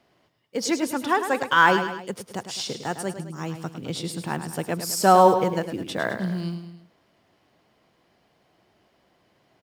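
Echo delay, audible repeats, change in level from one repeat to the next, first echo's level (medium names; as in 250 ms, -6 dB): 105 ms, 3, -6.0 dB, -9.5 dB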